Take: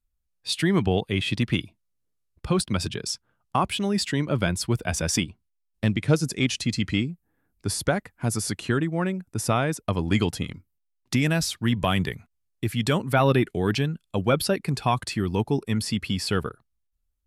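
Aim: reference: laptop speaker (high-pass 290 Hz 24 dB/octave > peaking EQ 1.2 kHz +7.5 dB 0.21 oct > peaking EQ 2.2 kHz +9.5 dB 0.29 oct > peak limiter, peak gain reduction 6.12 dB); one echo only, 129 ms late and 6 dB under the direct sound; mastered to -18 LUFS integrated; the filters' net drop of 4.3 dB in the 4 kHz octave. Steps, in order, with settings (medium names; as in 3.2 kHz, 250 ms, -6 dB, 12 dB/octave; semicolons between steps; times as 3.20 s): high-pass 290 Hz 24 dB/octave; peaking EQ 1.2 kHz +7.5 dB 0.21 oct; peaking EQ 2.2 kHz +9.5 dB 0.29 oct; peaking EQ 4 kHz -6.5 dB; delay 129 ms -6 dB; trim +10 dB; peak limiter -4 dBFS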